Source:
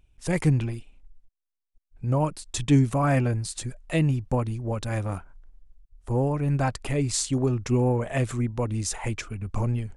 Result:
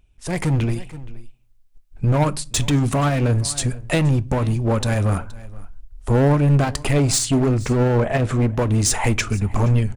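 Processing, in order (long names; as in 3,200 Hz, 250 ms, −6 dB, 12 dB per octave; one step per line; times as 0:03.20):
0:07.63–0:08.42: low-pass filter 2,000 Hz 6 dB per octave
in parallel at −3 dB: wave folding −26 dBFS
on the sum: single-tap delay 472 ms −22 dB
automatic gain control gain up to 10.5 dB
brickwall limiter −9.5 dBFS, peak gain reduction 7.5 dB
on a send at −16 dB: convolution reverb RT60 0.35 s, pre-delay 5 ms
on the sum: level −2 dB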